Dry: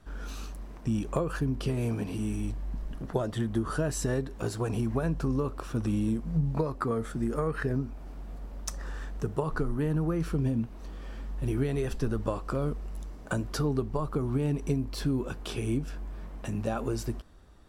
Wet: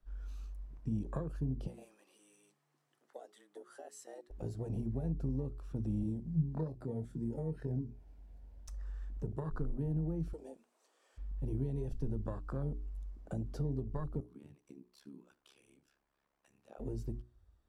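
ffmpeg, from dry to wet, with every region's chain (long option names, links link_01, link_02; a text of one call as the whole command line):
ffmpeg -i in.wav -filter_complex "[0:a]asettb=1/sr,asplit=3[link_01][link_02][link_03];[link_01]atrim=end=1.674[link_04];[link_02]atrim=start=1.67:end=4.3,asetpts=PTS-STARTPTS,afade=type=in:duration=0.004:curve=qsin,afade=type=out:start_time=2.626:duration=0.004:curve=qsin,highpass=frequency=1400:poles=1,equalizer=frequency=8200:width_type=o:width=0.83:gain=4.5,afreqshift=98[link_05];[link_03]atrim=start=4.296[link_06];[link_04][link_05]acrossfade=duration=0.004:curve1=hsin:curve2=qsin[link_07];[link_07][link_06]acrossfade=duration=0.004:curve1=qsin:curve2=hsin,asettb=1/sr,asplit=3[link_08][link_09][link_10];[link_08]atrim=end=6.034[link_11];[link_09]atrim=start=6.03:end=8.68,asetpts=PTS-STARTPTS,afade=type=in:duration=0.004:curve=qsin,afade=type=out:start_time=2.646:duration=0.004:curve=qsin,highpass=frequency=62:width=0.5412,highpass=frequency=62:width=1.3066,equalizer=frequency=1200:width=6.5:gain=-13,asplit=2[link_12][link_13];[link_13]adelay=25,volume=-8.5dB[link_14];[link_12][link_14]amix=inputs=2:normalize=0,atrim=end_sample=116865[link_15];[link_10]atrim=start=8.676[link_16];[link_11][link_15]acrossfade=duration=0.004:curve1=hsin:curve2=qsin[link_17];[link_17][link_16]acrossfade=duration=0.004:curve1=qsin:curve2=hsin,asettb=1/sr,asplit=3[link_18][link_19][link_20];[link_18]atrim=end=10.334[link_21];[link_19]atrim=start=10.33:end=11.18,asetpts=PTS-STARTPTS,afade=type=in:duration=0.004:curve=qsin,afade=type=out:start_time=0.846:duration=0.004:curve=qsin,highpass=frequency=420:width=0.5412,highpass=frequency=420:width=1.3066,equalizer=frequency=8100:width_type=o:width=1:gain=13.5[link_22];[link_20]atrim=start=11.176[link_23];[link_21][link_22]acrossfade=duration=0.004:curve1=hsin:curve2=qsin[link_24];[link_24][link_23]acrossfade=duration=0.004:curve1=qsin:curve2=hsin,asettb=1/sr,asplit=3[link_25][link_26][link_27];[link_25]atrim=end=14.204[link_28];[link_26]atrim=start=14.2:end=16.8,asetpts=PTS-STARTPTS,afade=type=in:duration=0.004:curve=qsin,afade=type=out:start_time=2.596:duration=0.004:curve=qsin,highpass=frequency=1100:poles=1,tremolo=f=69:d=0.974,aecho=1:1:75:0.0891,atrim=end_sample=114660[link_29];[link_27]atrim=start=16.796[link_30];[link_28][link_29]acrossfade=duration=0.004:curve1=hsin:curve2=qsin[link_31];[link_31][link_30]acrossfade=duration=0.004:curve1=qsin:curve2=hsin,afwtdn=0.0251,bandreject=frequency=60:width_type=h:width=6,bandreject=frequency=120:width_type=h:width=6,bandreject=frequency=180:width_type=h:width=6,bandreject=frequency=240:width_type=h:width=6,bandreject=frequency=300:width_type=h:width=6,bandreject=frequency=360:width_type=h:width=6,bandreject=frequency=420:width_type=h:width=6,acrossover=split=210|3000[link_32][link_33][link_34];[link_33]acompressor=threshold=-43dB:ratio=2[link_35];[link_32][link_35][link_34]amix=inputs=3:normalize=0,volume=-4.5dB" out.wav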